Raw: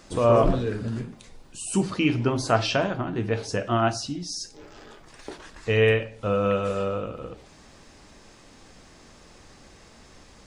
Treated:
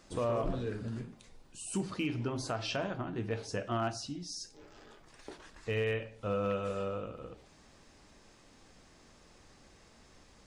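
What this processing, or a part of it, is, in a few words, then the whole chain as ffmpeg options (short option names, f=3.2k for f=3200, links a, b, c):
limiter into clipper: -af "alimiter=limit=-14.5dB:level=0:latency=1:release=150,asoftclip=type=hard:threshold=-16dB,volume=-9dB"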